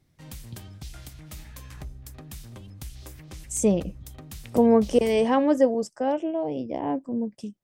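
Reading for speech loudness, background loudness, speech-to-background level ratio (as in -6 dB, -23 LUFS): -24.0 LUFS, -43.0 LUFS, 19.0 dB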